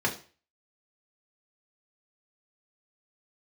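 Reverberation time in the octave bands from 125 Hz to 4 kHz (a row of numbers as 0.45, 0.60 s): 0.40, 0.35, 0.40, 0.40, 0.40, 0.40 s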